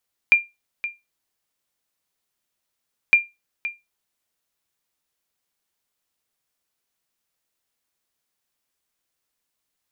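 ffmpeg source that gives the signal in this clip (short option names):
-f lavfi -i "aevalsrc='0.531*(sin(2*PI*2390*mod(t,2.81))*exp(-6.91*mod(t,2.81)/0.21)+0.2*sin(2*PI*2390*max(mod(t,2.81)-0.52,0))*exp(-6.91*max(mod(t,2.81)-0.52,0)/0.21))':d=5.62:s=44100"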